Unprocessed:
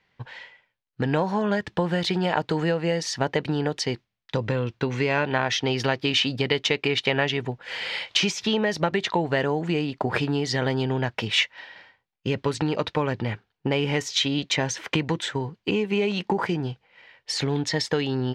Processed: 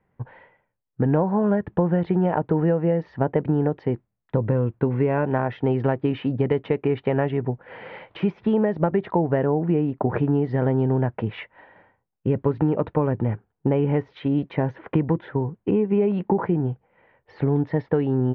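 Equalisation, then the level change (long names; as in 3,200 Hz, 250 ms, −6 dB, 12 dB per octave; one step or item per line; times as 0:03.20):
low-pass filter 1,600 Hz 12 dB per octave
high-frequency loss of the air 250 metres
tilt shelving filter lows +5.5 dB, about 1,100 Hz
0.0 dB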